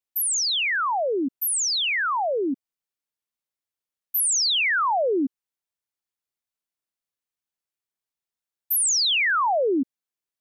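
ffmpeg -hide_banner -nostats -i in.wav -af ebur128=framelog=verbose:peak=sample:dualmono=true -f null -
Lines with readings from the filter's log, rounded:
Integrated loudness:
  I:         -18.5 LUFS
  Threshold: -28.7 LUFS
Loudness range:
  LRA:         6.3 LU
  Threshold: -41.8 LUFS
  LRA low:   -26.9 LUFS
  LRA high:  -20.6 LUFS
Sample peak:
  Peak:      -18.3 dBFS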